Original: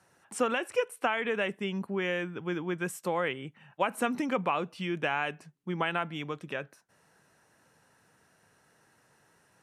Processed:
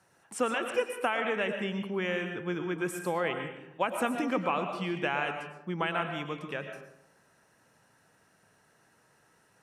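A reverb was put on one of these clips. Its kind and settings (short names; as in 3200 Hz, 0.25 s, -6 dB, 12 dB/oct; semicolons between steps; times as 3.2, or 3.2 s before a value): digital reverb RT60 0.85 s, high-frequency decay 0.5×, pre-delay 75 ms, DRR 5.5 dB; gain -1 dB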